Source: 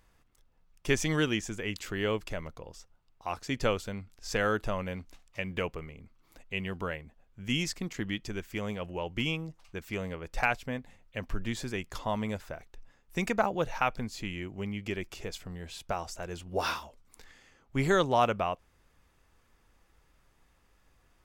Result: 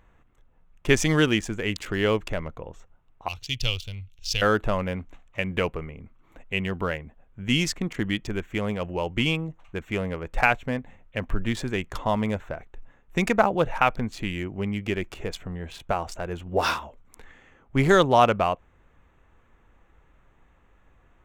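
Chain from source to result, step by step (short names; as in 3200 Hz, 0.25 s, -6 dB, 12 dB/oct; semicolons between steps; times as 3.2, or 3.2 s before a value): Wiener smoothing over 9 samples; 3.28–4.42 EQ curve 120 Hz 0 dB, 200 Hz -17 dB, 1700 Hz -18 dB, 2800 Hz +6 dB, 5500 Hz +7 dB, 7900 Hz -3 dB, 13000 Hz +4 dB; gain +7.5 dB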